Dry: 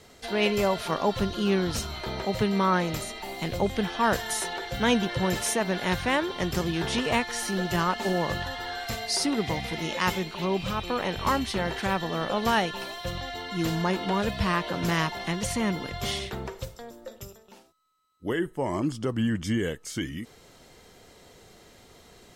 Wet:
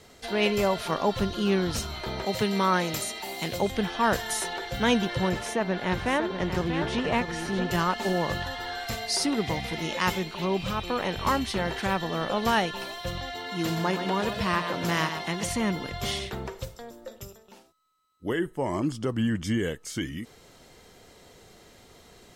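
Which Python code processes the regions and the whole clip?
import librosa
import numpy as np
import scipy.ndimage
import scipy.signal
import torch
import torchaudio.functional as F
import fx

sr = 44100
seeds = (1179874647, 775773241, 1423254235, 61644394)

y = fx.chain(x, sr, fx.highpass(hz=150.0, slope=6),
    fx.high_shelf(hz=3500.0, db=6.5),
    fx.notch(hz=1200.0, q=25.0), at=(2.26, 3.71))
y = fx.chain(y, sr, fx.lowpass(hz=2400.0, slope=6),
    fx.echo_single(ms=639, db=-8.0), at=(5.29, 7.71))
y = fx.chain(y, sr, fx.highpass(hz=160.0, slope=6),
    fx.echo_single(ms=122, db=-8.5), at=(13.32, 15.49))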